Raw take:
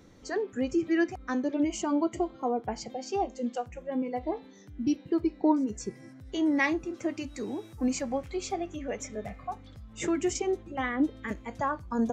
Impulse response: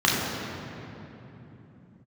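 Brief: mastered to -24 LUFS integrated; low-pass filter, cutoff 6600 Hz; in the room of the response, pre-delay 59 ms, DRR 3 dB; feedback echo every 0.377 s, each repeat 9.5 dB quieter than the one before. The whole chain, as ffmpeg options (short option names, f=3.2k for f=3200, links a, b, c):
-filter_complex "[0:a]lowpass=6.6k,aecho=1:1:377|754|1131|1508:0.335|0.111|0.0365|0.012,asplit=2[a][b];[1:a]atrim=start_sample=2205,adelay=59[c];[b][c]afir=irnorm=-1:irlink=0,volume=-22dB[d];[a][d]amix=inputs=2:normalize=0,volume=4dB"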